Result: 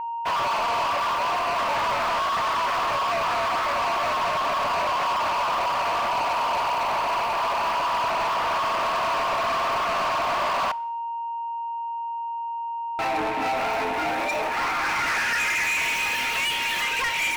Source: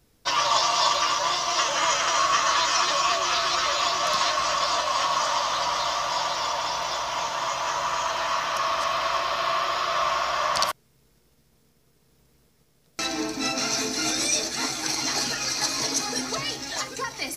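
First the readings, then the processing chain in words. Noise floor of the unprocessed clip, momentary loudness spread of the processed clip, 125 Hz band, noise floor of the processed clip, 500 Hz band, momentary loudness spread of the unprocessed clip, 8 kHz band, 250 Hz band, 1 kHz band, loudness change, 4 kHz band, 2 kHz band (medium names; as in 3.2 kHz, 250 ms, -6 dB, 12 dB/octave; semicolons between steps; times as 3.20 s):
-63 dBFS, 8 LU, +0.5 dB, -30 dBFS, +2.5 dB, 7 LU, -10.5 dB, -2.5 dB, +2.5 dB, 0.0 dB, -5.5 dB, +3.5 dB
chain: differentiator; low-pass sweep 810 Hz -> 3.3 kHz, 14.28–16.18 s; waveshaping leveller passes 5; in parallel at +2 dB: peak limiter -29 dBFS, peak gain reduction 8.5 dB; on the sum: waveshaping leveller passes 3; whistle 930 Hz -27 dBFS; resonant high shelf 3.3 kHz -9.5 dB, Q 3; saturation -21 dBFS, distortion -11 dB; two-slope reverb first 0.61 s, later 2.3 s, from -24 dB, DRR 19.5 dB; trim -1 dB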